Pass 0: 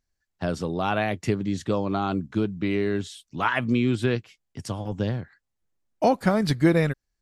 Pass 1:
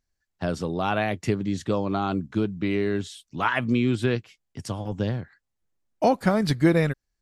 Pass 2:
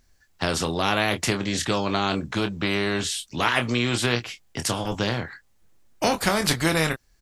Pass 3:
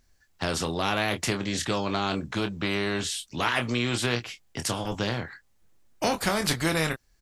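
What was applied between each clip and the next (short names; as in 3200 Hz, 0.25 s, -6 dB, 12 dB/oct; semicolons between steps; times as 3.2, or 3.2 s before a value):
nothing audible
doubler 25 ms -9 dB; spectral compressor 2:1
soft clip -8 dBFS, distortion -25 dB; gain -3 dB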